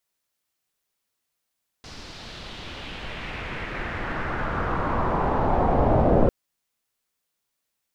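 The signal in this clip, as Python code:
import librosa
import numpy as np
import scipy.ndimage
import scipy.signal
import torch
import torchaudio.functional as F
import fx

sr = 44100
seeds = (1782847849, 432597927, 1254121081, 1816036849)

y = fx.riser_noise(sr, seeds[0], length_s=4.45, colour='pink', kind='lowpass', start_hz=5200.0, end_hz=580.0, q=2.2, swell_db=26.5, law='exponential')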